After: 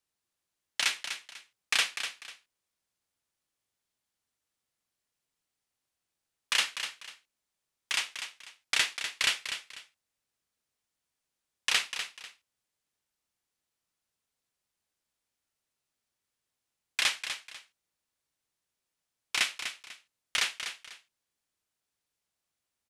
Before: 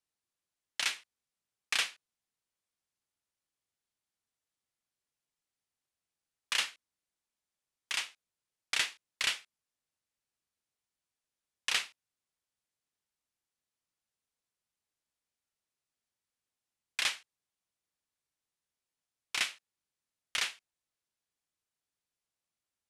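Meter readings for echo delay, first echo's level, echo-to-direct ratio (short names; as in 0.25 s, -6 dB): 0.247 s, -9.0 dB, -8.5 dB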